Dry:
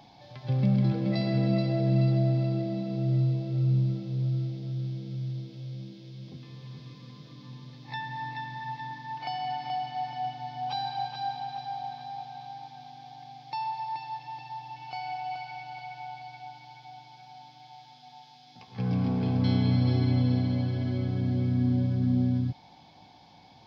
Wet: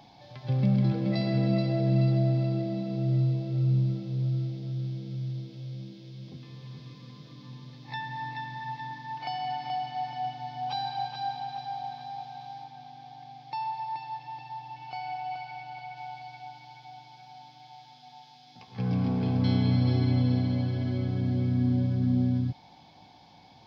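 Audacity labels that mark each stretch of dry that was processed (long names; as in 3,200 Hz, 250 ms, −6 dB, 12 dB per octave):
12.630000	15.970000	high-shelf EQ 4,300 Hz −6 dB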